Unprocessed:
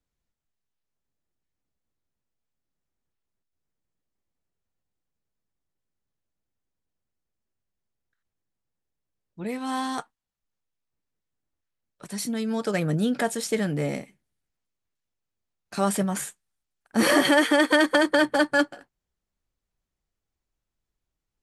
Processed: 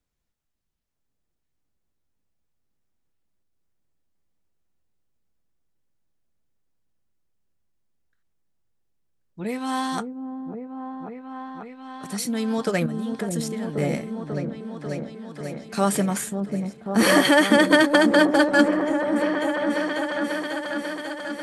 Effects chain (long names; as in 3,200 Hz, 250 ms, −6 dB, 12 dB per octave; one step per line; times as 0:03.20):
0:12.86–0:13.78: output level in coarse steps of 18 dB
on a send: echo whose low-pass opens from repeat to repeat 542 ms, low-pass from 400 Hz, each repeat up 1 octave, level −3 dB
on the sum: level +2.5 dB